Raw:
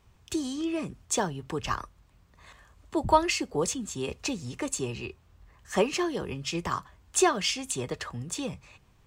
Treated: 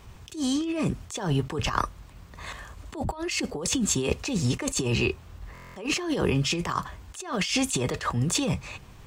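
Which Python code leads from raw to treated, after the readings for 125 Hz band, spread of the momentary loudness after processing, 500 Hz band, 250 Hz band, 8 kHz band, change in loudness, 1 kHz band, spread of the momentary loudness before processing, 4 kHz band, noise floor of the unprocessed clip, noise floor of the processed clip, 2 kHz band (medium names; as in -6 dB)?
+9.5 dB, 15 LU, -1.0 dB, +4.0 dB, +2.0 dB, +2.5 dB, -3.0 dB, 11 LU, +3.5 dB, -61 dBFS, -48 dBFS, +3.0 dB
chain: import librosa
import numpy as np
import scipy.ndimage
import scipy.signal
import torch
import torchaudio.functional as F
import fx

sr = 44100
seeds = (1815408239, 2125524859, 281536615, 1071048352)

y = fx.over_compress(x, sr, threshold_db=-36.0, ratio=-1.0)
y = fx.buffer_glitch(y, sr, at_s=(5.53,), block=1024, repeats=9)
y = fx.attack_slew(y, sr, db_per_s=170.0)
y = y * 10.0 ** (8.5 / 20.0)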